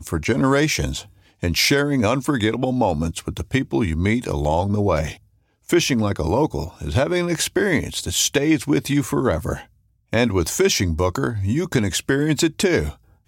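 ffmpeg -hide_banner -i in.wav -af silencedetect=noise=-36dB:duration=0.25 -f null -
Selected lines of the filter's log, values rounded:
silence_start: 1.03
silence_end: 1.43 | silence_duration: 0.40
silence_start: 5.15
silence_end: 5.69 | silence_duration: 0.54
silence_start: 9.63
silence_end: 10.13 | silence_duration: 0.50
silence_start: 12.93
silence_end: 13.28 | silence_duration: 0.35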